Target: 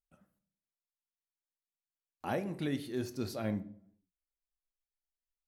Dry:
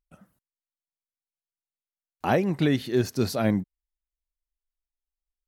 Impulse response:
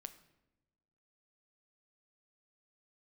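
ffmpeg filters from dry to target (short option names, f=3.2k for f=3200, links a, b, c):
-filter_complex "[0:a]asettb=1/sr,asplit=3[a][b][c];[a]atrim=end=2.264[d];[b]atrim=start=2.26:end=3.05,asetpts=PTS-STARTPTS,afade=t=in:d=0.004:c=qsin,afade=t=out:st=0.786:d=0.004:c=qsin,equalizer=f=10k:t=o:w=0.5:g=10[e];[c]atrim=start=3.046[f];[d][e]acrossfade=d=0.004:c1=hsin:c2=qsin[g];[g][f]acrossfade=d=0.004:c1=qsin:c2=hsin[h];[1:a]atrim=start_sample=2205,asetrate=83790,aresample=44100[i];[h][i]afir=irnorm=-1:irlink=0,volume=-1dB"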